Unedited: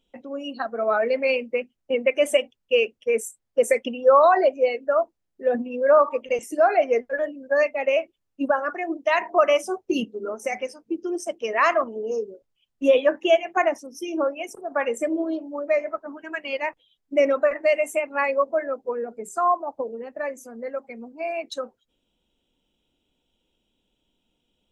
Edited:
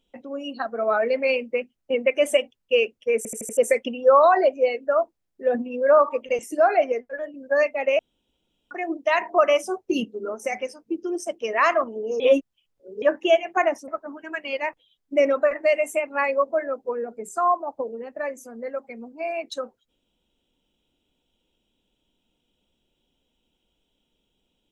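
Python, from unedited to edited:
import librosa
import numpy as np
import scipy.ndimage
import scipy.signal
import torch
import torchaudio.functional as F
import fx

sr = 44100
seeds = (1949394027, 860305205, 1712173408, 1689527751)

y = fx.edit(x, sr, fx.stutter_over(start_s=3.17, slice_s=0.08, count=5),
    fx.clip_gain(start_s=6.92, length_s=0.42, db=-6.0),
    fx.room_tone_fill(start_s=7.99, length_s=0.72),
    fx.reverse_span(start_s=12.2, length_s=0.82),
    fx.cut(start_s=13.88, length_s=2.0), tone=tone)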